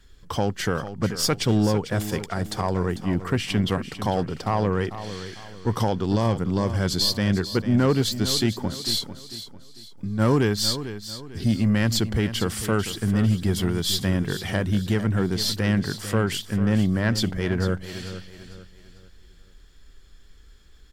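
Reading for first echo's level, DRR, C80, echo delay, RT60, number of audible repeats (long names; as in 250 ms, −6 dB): −12.0 dB, no reverb audible, no reverb audible, 447 ms, no reverb audible, 3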